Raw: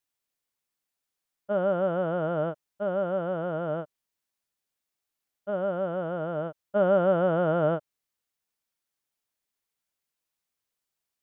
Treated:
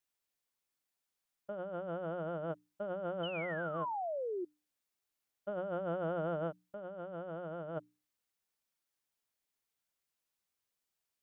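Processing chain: painted sound fall, 3.23–4.45 s, 340–3100 Hz -35 dBFS; compressor with a negative ratio -32 dBFS, ratio -1; hum notches 60/120/180/240/300 Hz; trim -7 dB

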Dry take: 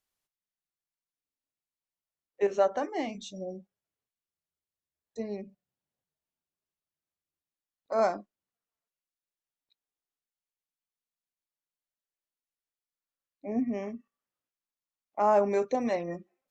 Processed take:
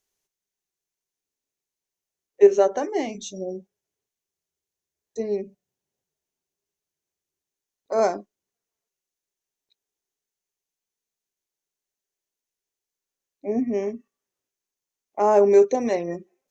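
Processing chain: graphic EQ with 31 bands 400 Hz +10 dB, 1.25 kHz -5 dB, 6.3 kHz +9 dB; trim +4 dB

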